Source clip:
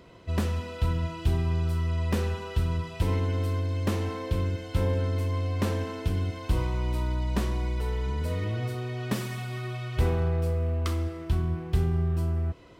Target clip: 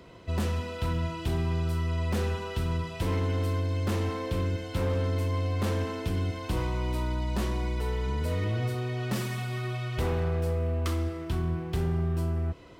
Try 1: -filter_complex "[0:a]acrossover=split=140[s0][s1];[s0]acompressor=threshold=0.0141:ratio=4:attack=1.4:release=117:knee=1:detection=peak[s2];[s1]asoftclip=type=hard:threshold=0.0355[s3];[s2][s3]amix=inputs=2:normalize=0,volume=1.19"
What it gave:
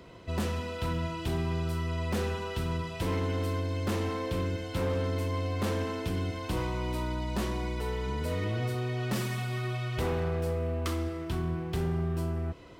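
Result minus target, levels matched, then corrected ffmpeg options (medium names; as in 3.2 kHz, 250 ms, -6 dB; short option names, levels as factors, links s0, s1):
compression: peak gain reduction +5.5 dB
-filter_complex "[0:a]acrossover=split=140[s0][s1];[s0]acompressor=threshold=0.0316:ratio=4:attack=1.4:release=117:knee=1:detection=peak[s2];[s1]asoftclip=type=hard:threshold=0.0355[s3];[s2][s3]amix=inputs=2:normalize=0,volume=1.19"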